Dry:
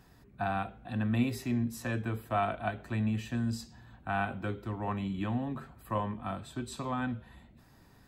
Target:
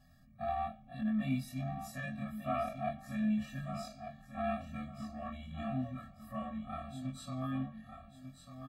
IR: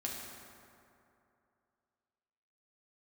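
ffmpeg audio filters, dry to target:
-filter_complex "[0:a]afftfilt=real='re':imag='-im':win_size=2048:overlap=0.75,equalizer=f=350:w=6.5:g=8.5,atempo=0.93,asplit=2[s0][s1];[s1]aecho=0:1:1195|2390|3585:0.335|0.0837|0.0209[s2];[s0][s2]amix=inputs=2:normalize=0,afftfilt=real='re*eq(mod(floor(b*sr/1024/270),2),0)':imag='im*eq(mod(floor(b*sr/1024/270),2),0)':win_size=1024:overlap=0.75,volume=1.12"

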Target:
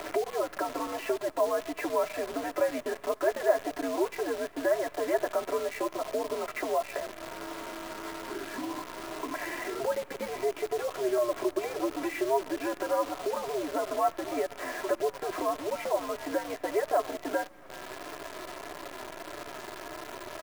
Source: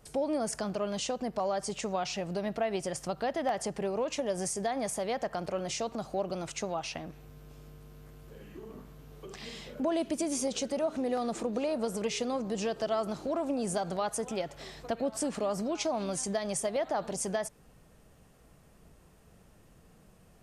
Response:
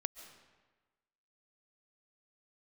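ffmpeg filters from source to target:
-filter_complex "[0:a]asplit=2[s0][s1];[s1]acompressor=threshold=0.00708:ratio=10,volume=1[s2];[s0][s2]amix=inputs=2:normalize=0,highpass=f=570:t=q:w=0.5412,highpass=f=570:t=q:w=1.307,lowpass=f=2300:t=q:w=0.5176,lowpass=f=2300:t=q:w=0.7071,lowpass=f=2300:t=q:w=1.932,afreqshift=-120,aemphasis=mode=reproduction:type=75fm,aecho=1:1:3:0.89,asplit=2[s3][s4];[1:a]atrim=start_sample=2205,asetrate=41895,aresample=44100[s5];[s4][s5]afir=irnorm=-1:irlink=0,volume=0.335[s6];[s3][s6]amix=inputs=2:normalize=0,flanger=delay=6.7:depth=1.5:regen=-30:speed=1.6:shape=sinusoidal,acompressor=mode=upward:threshold=0.0282:ratio=2.5,acrusher=bits=8:dc=4:mix=0:aa=0.000001,volume=1.58"

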